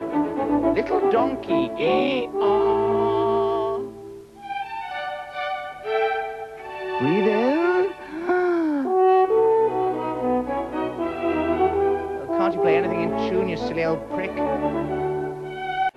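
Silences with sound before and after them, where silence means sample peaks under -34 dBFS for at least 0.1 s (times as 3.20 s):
4.21–4.38 s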